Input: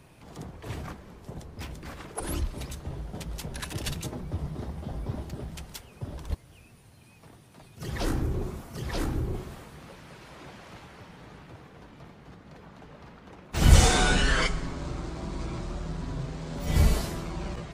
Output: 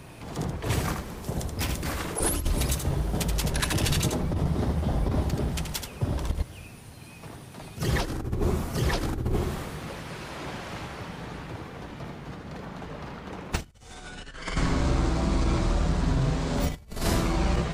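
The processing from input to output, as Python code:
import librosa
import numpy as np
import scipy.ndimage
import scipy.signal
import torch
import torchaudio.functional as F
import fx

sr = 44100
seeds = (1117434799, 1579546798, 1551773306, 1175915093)

y = fx.high_shelf(x, sr, hz=fx.line((0.69, 5200.0), (3.3, 10000.0)), db=10.0, at=(0.69, 3.3), fade=0.02)
y = y + 10.0 ** (-6.5 / 20.0) * np.pad(y, (int(79 * sr / 1000.0), 0))[:len(y)]
y = fx.over_compress(y, sr, threshold_db=-31.0, ratio=-0.5)
y = y * librosa.db_to_amplitude(5.0)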